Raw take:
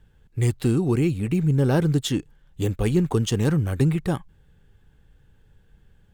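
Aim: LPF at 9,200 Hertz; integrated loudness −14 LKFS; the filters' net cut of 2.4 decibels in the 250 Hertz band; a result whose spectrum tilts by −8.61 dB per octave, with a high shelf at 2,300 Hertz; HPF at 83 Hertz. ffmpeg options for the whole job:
ffmpeg -i in.wav -af "highpass=83,lowpass=9200,equalizer=frequency=250:width_type=o:gain=-3.5,highshelf=frequency=2300:gain=-8,volume=11dB" out.wav

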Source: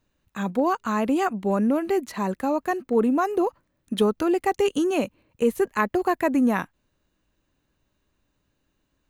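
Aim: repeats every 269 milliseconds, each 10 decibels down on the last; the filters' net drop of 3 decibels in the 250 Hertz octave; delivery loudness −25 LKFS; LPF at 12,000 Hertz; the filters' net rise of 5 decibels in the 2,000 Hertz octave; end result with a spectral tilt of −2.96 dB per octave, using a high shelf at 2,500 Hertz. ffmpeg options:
ffmpeg -i in.wav -af "lowpass=12000,equalizer=frequency=250:width_type=o:gain=-4,equalizer=frequency=2000:width_type=o:gain=3.5,highshelf=frequency=2500:gain=6.5,aecho=1:1:269|538|807|1076:0.316|0.101|0.0324|0.0104,volume=-0.5dB" out.wav

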